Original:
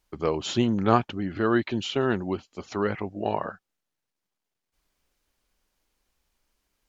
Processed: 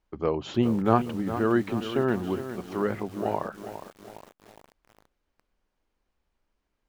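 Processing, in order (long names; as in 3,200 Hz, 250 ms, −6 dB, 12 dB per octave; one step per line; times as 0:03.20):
low-pass filter 1,400 Hz 6 dB per octave
mains-hum notches 50/100/150 Hz
feedback echo at a low word length 410 ms, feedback 55%, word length 7 bits, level −10.5 dB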